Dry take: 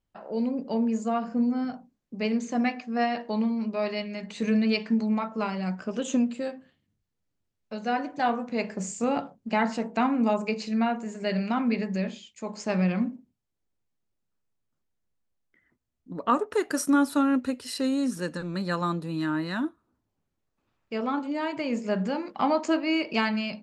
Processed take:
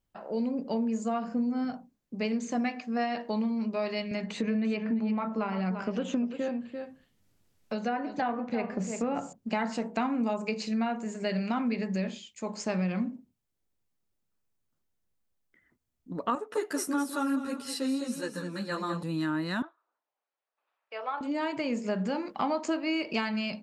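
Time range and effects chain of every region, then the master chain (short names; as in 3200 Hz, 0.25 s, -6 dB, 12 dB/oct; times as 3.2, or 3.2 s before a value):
4.11–9.33 treble ducked by the level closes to 2300 Hz, closed at -25 dBFS + echo 0.342 s -11.5 dB + three-band squash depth 40%
16.35–19.03 Bessel high-pass 160 Hz + feedback echo 0.204 s, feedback 26%, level -8.5 dB + ensemble effect
19.62–21.21 HPF 580 Hz 24 dB/oct + air absorption 240 m
whole clip: high shelf 9600 Hz +5.5 dB; compressor 3:1, threshold -27 dBFS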